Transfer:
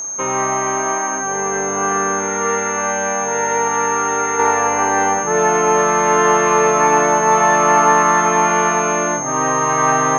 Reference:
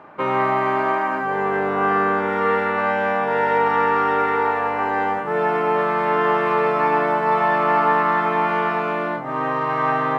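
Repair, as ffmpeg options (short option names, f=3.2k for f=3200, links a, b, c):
-af "bandreject=f=6.4k:w=30,asetnsamples=n=441:p=0,asendcmd='4.39 volume volume -5dB',volume=0dB"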